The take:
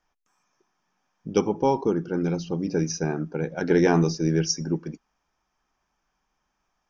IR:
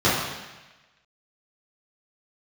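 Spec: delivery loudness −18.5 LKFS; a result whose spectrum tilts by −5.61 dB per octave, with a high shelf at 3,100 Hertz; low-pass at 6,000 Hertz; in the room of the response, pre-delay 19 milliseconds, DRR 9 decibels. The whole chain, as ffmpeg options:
-filter_complex "[0:a]lowpass=6000,highshelf=frequency=3100:gain=5,asplit=2[link_01][link_02];[1:a]atrim=start_sample=2205,adelay=19[link_03];[link_02][link_03]afir=irnorm=-1:irlink=0,volume=-29dB[link_04];[link_01][link_04]amix=inputs=2:normalize=0,volume=5.5dB"

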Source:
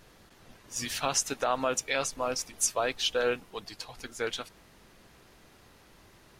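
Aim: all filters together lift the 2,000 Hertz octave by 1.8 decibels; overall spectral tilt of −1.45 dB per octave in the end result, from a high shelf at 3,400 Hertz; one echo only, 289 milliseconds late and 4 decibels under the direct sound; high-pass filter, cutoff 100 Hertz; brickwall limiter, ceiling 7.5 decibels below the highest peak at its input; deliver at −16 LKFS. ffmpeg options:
ffmpeg -i in.wav -af "highpass=100,equalizer=frequency=2000:width_type=o:gain=4,highshelf=frequency=3400:gain=-5,alimiter=limit=-21dB:level=0:latency=1,aecho=1:1:289:0.631,volume=17dB" out.wav

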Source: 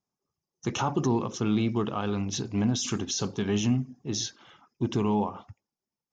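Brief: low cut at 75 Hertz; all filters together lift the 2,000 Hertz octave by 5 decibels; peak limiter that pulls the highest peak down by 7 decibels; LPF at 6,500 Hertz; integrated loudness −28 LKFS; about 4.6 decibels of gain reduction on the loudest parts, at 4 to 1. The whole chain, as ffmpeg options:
ffmpeg -i in.wav -af "highpass=75,lowpass=6500,equalizer=frequency=2000:width_type=o:gain=7,acompressor=threshold=-26dB:ratio=4,volume=5.5dB,alimiter=limit=-17dB:level=0:latency=1" out.wav

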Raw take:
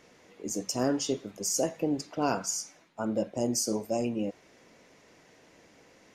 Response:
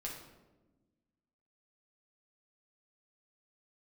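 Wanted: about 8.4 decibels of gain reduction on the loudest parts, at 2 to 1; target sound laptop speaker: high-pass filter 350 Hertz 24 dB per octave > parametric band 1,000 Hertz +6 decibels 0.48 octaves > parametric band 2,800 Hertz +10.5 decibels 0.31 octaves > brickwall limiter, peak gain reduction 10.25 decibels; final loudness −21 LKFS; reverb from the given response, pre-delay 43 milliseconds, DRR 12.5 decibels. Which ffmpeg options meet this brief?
-filter_complex "[0:a]acompressor=threshold=-39dB:ratio=2,asplit=2[link_01][link_02];[1:a]atrim=start_sample=2205,adelay=43[link_03];[link_02][link_03]afir=irnorm=-1:irlink=0,volume=-11.5dB[link_04];[link_01][link_04]amix=inputs=2:normalize=0,highpass=frequency=350:width=0.5412,highpass=frequency=350:width=1.3066,equalizer=frequency=1000:width_type=o:width=0.48:gain=6,equalizer=frequency=2800:width_type=o:width=0.31:gain=10.5,volume=22dB,alimiter=limit=-11dB:level=0:latency=1"

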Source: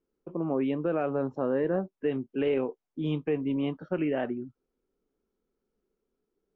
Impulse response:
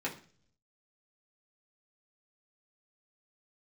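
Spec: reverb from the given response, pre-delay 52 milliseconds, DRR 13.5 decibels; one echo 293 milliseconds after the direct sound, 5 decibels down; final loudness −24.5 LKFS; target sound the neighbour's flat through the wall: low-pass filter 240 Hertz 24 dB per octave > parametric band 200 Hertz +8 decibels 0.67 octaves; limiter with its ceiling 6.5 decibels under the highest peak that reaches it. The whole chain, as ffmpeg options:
-filter_complex "[0:a]alimiter=limit=-24dB:level=0:latency=1,aecho=1:1:293:0.562,asplit=2[link_01][link_02];[1:a]atrim=start_sample=2205,adelay=52[link_03];[link_02][link_03]afir=irnorm=-1:irlink=0,volume=-18dB[link_04];[link_01][link_04]amix=inputs=2:normalize=0,lowpass=frequency=240:width=0.5412,lowpass=frequency=240:width=1.3066,equalizer=frequency=200:width_type=o:width=0.67:gain=8,volume=12dB"

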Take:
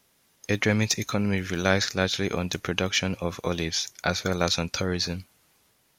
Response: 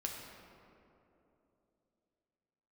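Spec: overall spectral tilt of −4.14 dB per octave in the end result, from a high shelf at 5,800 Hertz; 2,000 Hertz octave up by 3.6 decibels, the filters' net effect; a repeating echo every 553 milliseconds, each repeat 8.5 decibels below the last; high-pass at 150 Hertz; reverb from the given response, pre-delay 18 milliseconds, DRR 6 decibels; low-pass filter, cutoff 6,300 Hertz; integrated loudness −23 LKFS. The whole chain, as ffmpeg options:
-filter_complex "[0:a]highpass=150,lowpass=6300,equalizer=frequency=2000:width_type=o:gain=5.5,highshelf=frequency=5800:gain=-7,aecho=1:1:553|1106|1659|2212:0.376|0.143|0.0543|0.0206,asplit=2[link_01][link_02];[1:a]atrim=start_sample=2205,adelay=18[link_03];[link_02][link_03]afir=irnorm=-1:irlink=0,volume=-6.5dB[link_04];[link_01][link_04]amix=inputs=2:normalize=0,volume=2dB"

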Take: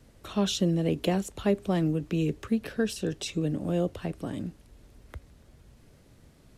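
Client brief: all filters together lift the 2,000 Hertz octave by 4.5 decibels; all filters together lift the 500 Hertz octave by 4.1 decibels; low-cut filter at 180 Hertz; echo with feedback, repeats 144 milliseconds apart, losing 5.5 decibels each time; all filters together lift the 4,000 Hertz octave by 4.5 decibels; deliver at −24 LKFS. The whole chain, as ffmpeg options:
ffmpeg -i in.wav -af "highpass=180,equalizer=frequency=500:width_type=o:gain=5,equalizer=frequency=2000:width_type=o:gain=4.5,equalizer=frequency=4000:width_type=o:gain=4,aecho=1:1:144|288|432|576|720|864|1008:0.531|0.281|0.149|0.079|0.0419|0.0222|0.0118,volume=2.5dB" out.wav

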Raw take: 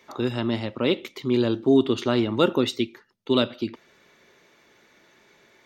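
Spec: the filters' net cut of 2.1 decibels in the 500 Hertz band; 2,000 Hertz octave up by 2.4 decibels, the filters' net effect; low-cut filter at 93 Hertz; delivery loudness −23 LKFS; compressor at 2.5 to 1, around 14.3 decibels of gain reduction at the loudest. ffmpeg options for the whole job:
ffmpeg -i in.wav -af "highpass=93,equalizer=frequency=500:width_type=o:gain=-3,equalizer=frequency=2000:width_type=o:gain=3.5,acompressor=threshold=-37dB:ratio=2.5,volume=14dB" out.wav

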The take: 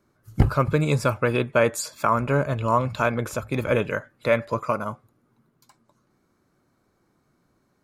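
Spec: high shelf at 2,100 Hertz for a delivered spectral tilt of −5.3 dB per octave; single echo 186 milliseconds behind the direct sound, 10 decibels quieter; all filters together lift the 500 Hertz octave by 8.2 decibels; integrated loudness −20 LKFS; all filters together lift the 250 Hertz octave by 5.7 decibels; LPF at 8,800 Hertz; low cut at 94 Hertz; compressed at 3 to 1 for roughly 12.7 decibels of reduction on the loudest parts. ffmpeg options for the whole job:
ffmpeg -i in.wav -af "highpass=94,lowpass=8800,equalizer=frequency=250:width_type=o:gain=5,equalizer=frequency=500:width_type=o:gain=8,highshelf=frequency=2100:gain=7,acompressor=threshold=-26dB:ratio=3,aecho=1:1:186:0.316,volume=8dB" out.wav

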